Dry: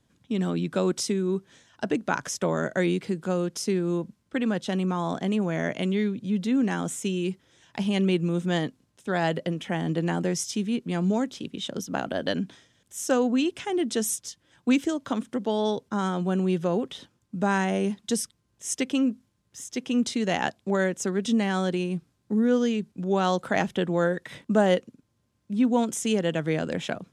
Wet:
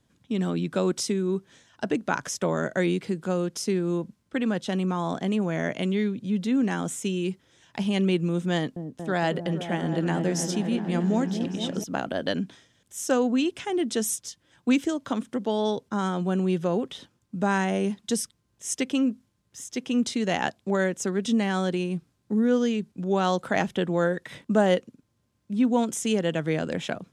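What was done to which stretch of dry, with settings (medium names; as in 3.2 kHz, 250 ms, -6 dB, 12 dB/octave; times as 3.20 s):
8.53–11.84 s: delay with an opening low-pass 231 ms, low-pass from 400 Hz, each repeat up 1 oct, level -6 dB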